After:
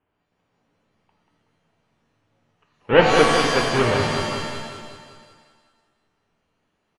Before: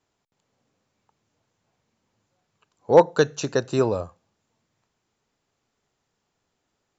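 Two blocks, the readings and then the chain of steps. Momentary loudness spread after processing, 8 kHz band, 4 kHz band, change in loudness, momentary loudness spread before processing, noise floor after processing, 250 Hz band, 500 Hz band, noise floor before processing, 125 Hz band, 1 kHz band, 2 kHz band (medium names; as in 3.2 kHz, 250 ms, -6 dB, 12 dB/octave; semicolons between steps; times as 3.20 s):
15 LU, no reading, +13.5 dB, +2.5 dB, 12 LU, -74 dBFS, +3.5 dB, +1.5 dB, -77 dBFS, +4.5 dB, +6.0 dB, +12.0 dB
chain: square wave that keeps the level; elliptic low-pass 3 kHz, stop band 40 dB; feedback delay 187 ms, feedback 56%, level -6 dB; pitch-shifted reverb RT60 1.1 s, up +7 st, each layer -2 dB, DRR 2.5 dB; trim -3.5 dB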